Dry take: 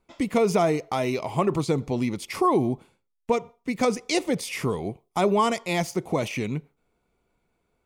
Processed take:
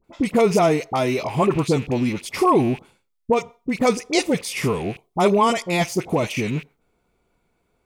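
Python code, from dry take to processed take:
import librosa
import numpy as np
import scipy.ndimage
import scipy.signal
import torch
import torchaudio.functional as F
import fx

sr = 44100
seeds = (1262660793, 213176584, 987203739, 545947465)

y = fx.rattle_buzz(x, sr, strikes_db=-39.0, level_db=-32.0)
y = fx.dispersion(y, sr, late='highs', ms=41.0, hz=1100.0)
y = y * 10.0 ** (4.5 / 20.0)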